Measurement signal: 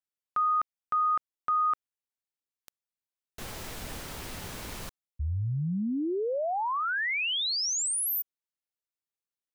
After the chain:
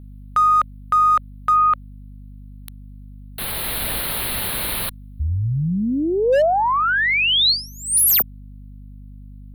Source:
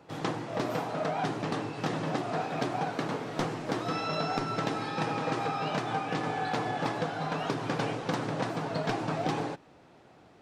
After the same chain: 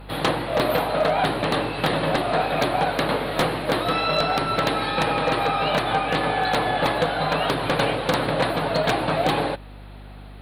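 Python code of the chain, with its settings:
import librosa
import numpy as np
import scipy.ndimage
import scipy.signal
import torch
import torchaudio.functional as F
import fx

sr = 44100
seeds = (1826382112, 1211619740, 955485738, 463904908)

p1 = fx.cheby_harmonics(x, sr, harmonics=(4,), levels_db=(-39,), full_scale_db=-16.0)
p2 = fx.curve_eq(p1, sr, hz=(360.0, 2800.0, 4200.0, 6200.0, 9900.0), db=(0, 7, 10, -27, 14))
p3 = fx.rider(p2, sr, range_db=5, speed_s=0.5)
p4 = p2 + (p3 * librosa.db_to_amplitude(0.0))
p5 = fx.dynamic_eq(p4, sr, hz=560.0, q=3.8, threshold_db=-41.0, ratio=4.0, max_db=7)
p6 = 10.0 ** (-11.5 / 20.0) * (np.abs((p5 / 10.0 ** (-11.5 / 20.0) + 3.0) % 4.0 - 2.0) - 1.0)
y = fx.add_hum(p6, sr, base_hz=50, snr_db=18)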